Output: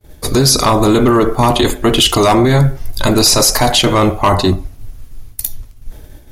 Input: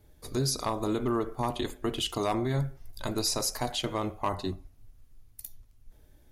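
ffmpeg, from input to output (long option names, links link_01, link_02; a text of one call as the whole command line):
ffmpeg -i in.wav -af "apsyclip=29.5dB,agate=range=-33dB:threshold=-22dB:ratio=3:detection=peak,volume=-5.5dB" out.wav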